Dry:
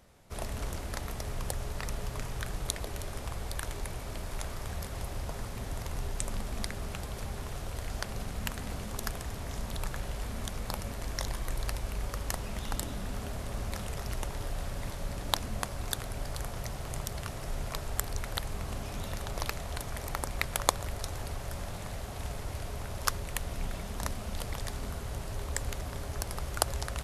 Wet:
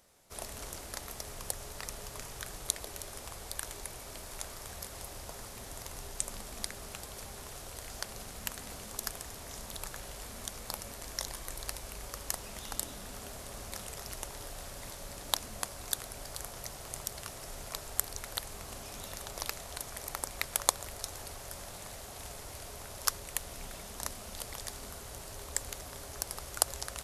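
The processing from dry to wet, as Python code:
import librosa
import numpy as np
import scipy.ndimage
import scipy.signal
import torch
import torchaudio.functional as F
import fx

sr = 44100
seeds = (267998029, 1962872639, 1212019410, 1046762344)

y = fx.bass_treble(x, sr, bass_db=-8, treble_db=8)
y = y * librosa.db_to_amplitude(-4.5)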